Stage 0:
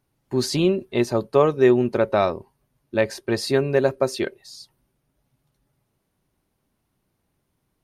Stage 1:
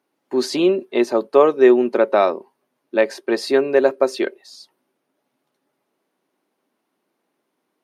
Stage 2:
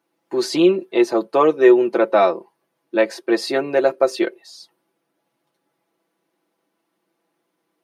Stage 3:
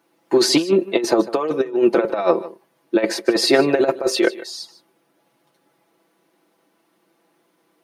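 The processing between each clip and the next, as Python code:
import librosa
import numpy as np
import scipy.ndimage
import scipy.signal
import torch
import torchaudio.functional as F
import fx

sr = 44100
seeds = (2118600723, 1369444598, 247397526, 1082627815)

y1 = scipy.signal.sosfilt(scipy.signal.butter(4, 260.0, 'highpass', fs=sr, output='sos'), x)
y1 = fx.high_shelf(y1, sr, hz=4700.0, db=-9.0)
y1 = F.gain(torch.from_numpy(y1), 4.5).numpy()
y2 = y1 + 0.72 * np.pad(y1, (int(6.0 * sr / 1000.0), 0))[:len(y1)]
y2 = F.gain(torch.from_numpy(y2), -1.0).numpy()
y3 = fx.over_compress(y2, sr, threshold_db=-19.0, ratio=-0.5)
y3 = y3 + 10.0 ** (-17.5 / 20.0) * np.pad(y3, (int(151 * sr / 1000.0), 0))[:len(y3)]
y3 = F.gain(torch.from_numpy(y3), 4.0).numpy()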